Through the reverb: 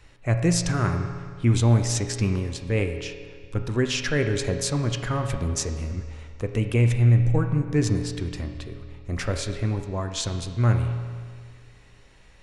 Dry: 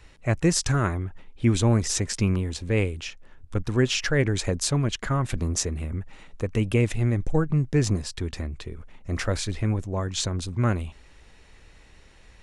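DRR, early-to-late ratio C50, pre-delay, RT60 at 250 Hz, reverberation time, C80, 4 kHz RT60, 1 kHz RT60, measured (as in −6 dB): 5.5 dB, 7.0 dB, 7 ms, 1.9 s, 1.9 s, 8.5 dB, 1.8 s, 1.9 s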